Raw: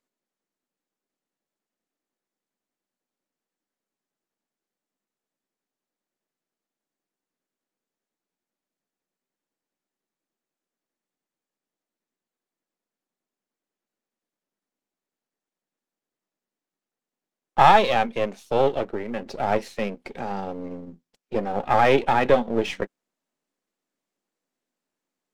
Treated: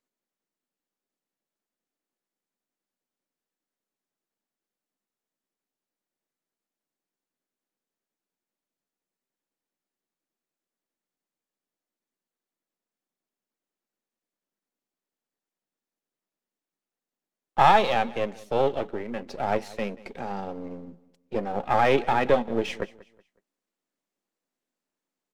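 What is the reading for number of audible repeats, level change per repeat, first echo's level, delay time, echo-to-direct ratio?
2, -9.5 dB, -20.5 dB, 0.185 s, -20.0 dB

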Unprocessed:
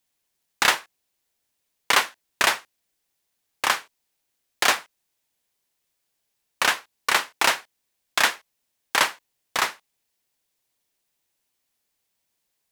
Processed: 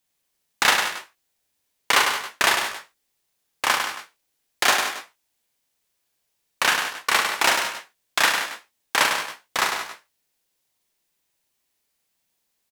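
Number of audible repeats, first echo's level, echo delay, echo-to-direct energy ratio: 5, -6.0 dB, 42 ms, -2.0 dB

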